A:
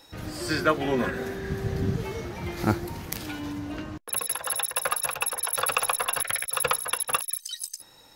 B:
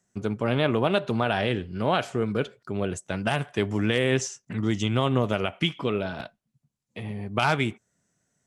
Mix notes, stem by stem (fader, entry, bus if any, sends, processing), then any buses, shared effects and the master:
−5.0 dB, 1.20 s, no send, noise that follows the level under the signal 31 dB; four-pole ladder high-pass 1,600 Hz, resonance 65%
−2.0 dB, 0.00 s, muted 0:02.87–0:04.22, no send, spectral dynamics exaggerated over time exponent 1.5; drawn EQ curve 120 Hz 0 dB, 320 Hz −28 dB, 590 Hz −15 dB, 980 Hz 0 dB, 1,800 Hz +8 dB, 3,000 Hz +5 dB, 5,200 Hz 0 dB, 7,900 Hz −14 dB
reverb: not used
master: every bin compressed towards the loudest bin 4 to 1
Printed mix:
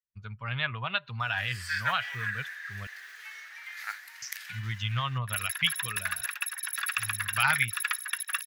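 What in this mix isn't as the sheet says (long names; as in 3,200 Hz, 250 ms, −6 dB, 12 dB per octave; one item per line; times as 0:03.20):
stem A −5.0 dB → +4.0 dB
master: missing every bin compressed towards the loudest bin 4 to 1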